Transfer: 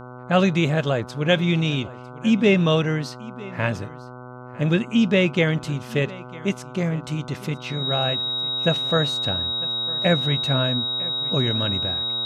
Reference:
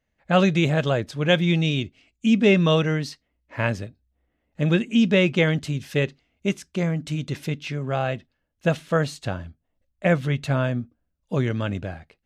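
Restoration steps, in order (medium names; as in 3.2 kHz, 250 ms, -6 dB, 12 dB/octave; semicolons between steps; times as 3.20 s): de-hum 124.9 Hz, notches 12; band-stop 3.8 kHz, Q 30; inverse comb 951 ms -20 dB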